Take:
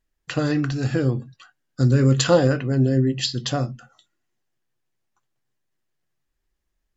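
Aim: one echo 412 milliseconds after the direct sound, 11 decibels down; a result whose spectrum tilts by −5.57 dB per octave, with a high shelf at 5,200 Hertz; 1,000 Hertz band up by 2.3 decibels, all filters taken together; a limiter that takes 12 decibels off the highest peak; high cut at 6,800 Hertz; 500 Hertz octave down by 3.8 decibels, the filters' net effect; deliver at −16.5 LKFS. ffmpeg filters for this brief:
ffmpeg -i in.wav -af "lowpass=6800,equalizer=frequency=500:width_type=o:gain=-5.5,equalizer=frequency=1000:width_type=o:gain=5,highshelf=frequency=5200:gain=6.5,alimiter=limit=-16dB:level=0:latency=1,aecho=1:1:412:0.282,volume=9.5dB" out.wav

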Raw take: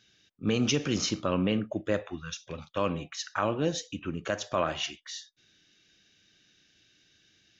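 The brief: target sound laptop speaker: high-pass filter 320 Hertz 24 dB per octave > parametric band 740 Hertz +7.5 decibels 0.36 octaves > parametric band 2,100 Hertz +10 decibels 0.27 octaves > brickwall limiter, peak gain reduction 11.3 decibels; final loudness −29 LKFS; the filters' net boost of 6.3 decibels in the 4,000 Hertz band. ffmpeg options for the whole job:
ffmpeg -i in.wav -af "highpass=frequency=320:width=0.5412,highpass=frequency=320:width=1.3066,equalizer=frequency=740:width_type=o:width=0.36:gain=7.5,equalizer=frequency=2100:width_type=o:width=0.27:gain=10,equalizer=frequency=4000:width_type=o:gain=8,volume=4.5dB,alimiter=limit=-16.5dB:level=0:latency=1" out.wav

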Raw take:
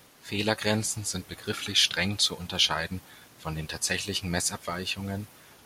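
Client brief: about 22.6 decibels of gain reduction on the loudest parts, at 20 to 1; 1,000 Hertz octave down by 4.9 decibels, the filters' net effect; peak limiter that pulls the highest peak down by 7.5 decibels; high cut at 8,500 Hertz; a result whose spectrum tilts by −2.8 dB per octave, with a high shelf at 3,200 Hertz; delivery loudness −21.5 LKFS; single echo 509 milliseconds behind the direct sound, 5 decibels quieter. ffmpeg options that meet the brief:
ffmpeg -i in.wav -af "lowpass=8500,equalizer=frequency=1000:width_type=o:gain=-7.5,highshelf=frequency=3200:gain=5.5,acompressor=threshold=-38dB:ratio=20,alimiter=level_in=7.5dB:limit=-24dB:level=0:latency=1,volume=-7.5dB,aecho=1:1:509:0.562,volume=21dB" out.wav

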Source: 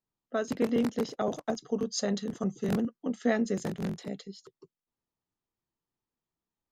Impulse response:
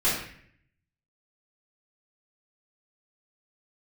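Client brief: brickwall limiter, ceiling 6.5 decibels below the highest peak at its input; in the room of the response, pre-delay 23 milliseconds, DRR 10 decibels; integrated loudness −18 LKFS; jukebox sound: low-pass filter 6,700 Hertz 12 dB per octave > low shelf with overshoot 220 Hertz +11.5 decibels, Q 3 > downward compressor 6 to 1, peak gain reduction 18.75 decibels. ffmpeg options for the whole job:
-filter_complex "[0:a]alimiter=limit=-22dB:level=0:latency=1,asplit=2[link_01][link_02];[1:a]atrim=start_sample=2205,adelay=23[link_03];[link_02][link_03]afir=irnorm=-1:irlink=0,volume=-23dB[link_04];[link_01][link_04]amix=inputs=2:normalize=0,lowpass=6700,lowshelf=frequency=220:width_type=q:width=3:gain=11.5,acompressor=threshold=-34dB:ratio=6,volume=20dB"

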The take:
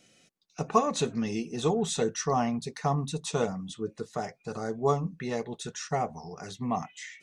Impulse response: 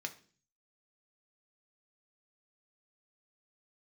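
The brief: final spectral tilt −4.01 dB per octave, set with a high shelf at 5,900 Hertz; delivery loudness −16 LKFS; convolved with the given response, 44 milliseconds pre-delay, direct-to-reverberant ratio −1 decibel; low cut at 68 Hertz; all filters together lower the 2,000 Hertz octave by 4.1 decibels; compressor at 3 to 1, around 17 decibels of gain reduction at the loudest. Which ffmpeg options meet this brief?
-filter_complex "[0:a]highpass=68,equalizer=frequency=2000:width_type=o:gain=-6.5,highshelf=frequency=5900:gain=8,acompressor=threshold=-41dB:ratio=3,asplit=2[link_01][link_02];[1:a]atrim=start_sample=2205,adelay=44[link_03];[link_02][link_03]afir=irnorm=-1:irlink=0,volume=1dB[link_04];[link_01][link_04]amix=inputs=2:normalize=0,volume=23dB"

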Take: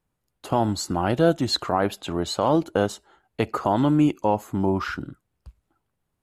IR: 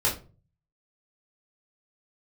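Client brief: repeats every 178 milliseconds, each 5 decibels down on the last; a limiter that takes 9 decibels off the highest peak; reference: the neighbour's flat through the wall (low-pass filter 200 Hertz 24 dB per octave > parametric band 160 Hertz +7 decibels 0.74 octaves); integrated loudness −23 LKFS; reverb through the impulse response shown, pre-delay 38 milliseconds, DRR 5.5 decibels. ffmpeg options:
-filter_complex "[0:a]alimiter=limit=-16.5dB:level=0:latency=1,aecho=1:1:178|356|534|712|890|1068|1246:0.562|0.315|0.176|0.0988|0.0553|0.031|0.0173,asplit=2[link_01][link_02];[1:a]atrim=start_sample=2205,adelay=38[link_03];[link_02][link_03]afir=irnorm=-1:irlink=0,volume=-16.5dB[link_04];[link_01][link_04]amix=inputs=2:normalize=0,lowpass=frequency=200:width=0.5412,lowpass=frequency=200:width=1.3066,equalizer=frequency=160:width_type=o:width=0.74:gain=7,volume=6dB"

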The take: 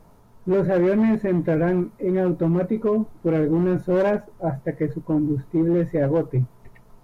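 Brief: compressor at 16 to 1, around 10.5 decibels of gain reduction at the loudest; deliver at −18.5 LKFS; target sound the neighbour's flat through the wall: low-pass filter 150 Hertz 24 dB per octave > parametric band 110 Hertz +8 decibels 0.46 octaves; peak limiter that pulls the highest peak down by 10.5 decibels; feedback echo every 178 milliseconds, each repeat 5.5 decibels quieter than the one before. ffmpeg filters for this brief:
ffmpeg -i in.wav -af "acompressor=threshold=-27dB:ratio=16,alimiter=level_in=5dB:limit=-24dB:level=0:latency=1,volume=-5dB,lowpass=frequency=150:width=0.5412,lowpass=frequency=150:width=1.3066,equalizer=frequency=110:width_type=o:width=0.46:gain=8,aecho=1:1:178|356|534|712|890|1068|1246:0.531|0.281|0.149|0.079|0.0419|0.0222|0.0118,volume=24dB" out.wav

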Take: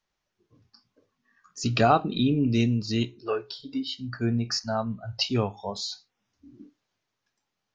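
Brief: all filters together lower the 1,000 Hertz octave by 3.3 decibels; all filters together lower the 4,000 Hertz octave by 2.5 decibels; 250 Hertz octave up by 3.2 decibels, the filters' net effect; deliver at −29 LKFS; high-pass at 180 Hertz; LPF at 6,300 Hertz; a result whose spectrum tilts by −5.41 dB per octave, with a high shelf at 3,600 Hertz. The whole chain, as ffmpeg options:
ffmpeg -i in.wav -af "highpass=180,lowpass=6300,equalizer=frequency=250:width_type=o:gain=5,equalizer=frequency=1000:width_type=o:gain=-6,highshelf=frequency=3600:gain=8,equalizer=frequency=4000:width_type=o:gain=-8,volume=-2.5dB" out.wav

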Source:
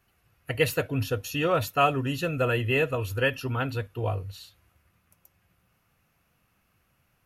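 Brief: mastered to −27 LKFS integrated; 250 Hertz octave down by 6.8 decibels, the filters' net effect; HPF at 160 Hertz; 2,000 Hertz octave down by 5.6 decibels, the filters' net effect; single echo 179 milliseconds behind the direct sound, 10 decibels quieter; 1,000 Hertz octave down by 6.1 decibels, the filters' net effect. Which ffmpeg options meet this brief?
ffmpeg -i in.wav -af "highpass=160,equalizer=frequency=250:width_type=o:gain=-7.5,equalizer=frequency=1000:width_type=o:gain=-7,equalizer=frequency=2000:width_type=o:gain=-6,aecho=1:1:179:0.316,volume=4.5dB" out.wav

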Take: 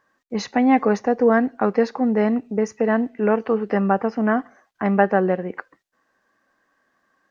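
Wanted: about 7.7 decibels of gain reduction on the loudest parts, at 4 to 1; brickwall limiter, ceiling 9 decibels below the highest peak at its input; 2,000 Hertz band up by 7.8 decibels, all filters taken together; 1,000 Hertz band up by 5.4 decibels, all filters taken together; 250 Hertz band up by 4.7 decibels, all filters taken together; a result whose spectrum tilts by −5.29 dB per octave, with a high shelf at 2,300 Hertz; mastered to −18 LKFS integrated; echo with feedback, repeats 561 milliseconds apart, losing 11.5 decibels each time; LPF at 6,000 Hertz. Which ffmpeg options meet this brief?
ffmpeg -i in.wav -af "lowpass=6000,equalizer=frequency=250:width_type=o:gain=5,equalizer=frequency=1000:width_type=o:gain=5,equalizer=frequency=2000:width_type=o:gain=4.5,highshelf=frequency=2300:gain=7.5,acompressor=threshold=-16dB:ratio=4,alimiter=limit=-12.5dB:level=0:latency=1,aecho=1:1:561|1122|1683:0.266|0.0718|0.0194,volume=5dB" out.wav

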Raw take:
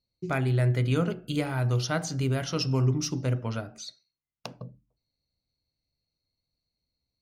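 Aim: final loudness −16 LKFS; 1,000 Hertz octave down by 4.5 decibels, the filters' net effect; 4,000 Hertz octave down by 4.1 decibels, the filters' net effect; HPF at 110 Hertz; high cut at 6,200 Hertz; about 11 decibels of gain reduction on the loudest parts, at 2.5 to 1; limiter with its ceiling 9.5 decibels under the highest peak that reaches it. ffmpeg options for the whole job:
ffmpeg -i in.wav -af "highpass=110,lowpass=6200,equalizer=frequency=1000:width_type=o:gain=-6.5,equalizer=frequency=4000:width_type=o:gain=-4,acompressor=threshold=-39dB:ratio=2.5,volume=25.5dB,alimiter=limit=-6dB:level=0:latency=1" out.wav

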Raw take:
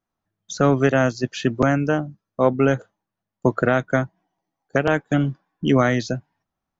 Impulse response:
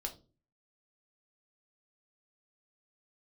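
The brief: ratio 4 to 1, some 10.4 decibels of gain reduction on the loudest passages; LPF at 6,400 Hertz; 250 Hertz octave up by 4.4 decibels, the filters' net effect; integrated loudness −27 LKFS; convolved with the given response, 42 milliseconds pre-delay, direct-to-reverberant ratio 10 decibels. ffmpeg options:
-filter_complex "[0:a]lowpass=6400,equalizer=frequency=250:width_type=o:gain=5,acompressor=threshold=-22dB:ratio=4,asplit=2[link_01][link_02];[1:a]atrim=start_sample=2205,adelay=42[link_03];[link_02][link_03]afir=irnorm=-1:irlink=0,volume=-9dB[link_04];[link_01][link_04]amix=inputs=2:normalize=0,volume=0.5dB"

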